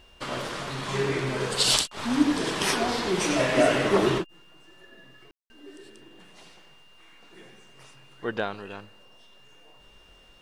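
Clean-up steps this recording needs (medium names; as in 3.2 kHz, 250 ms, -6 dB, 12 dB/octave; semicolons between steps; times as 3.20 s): clip repair -5.5 dBFS; band-stop 2.8 kHz, Q 30; room tone fill 5.31–5.50 s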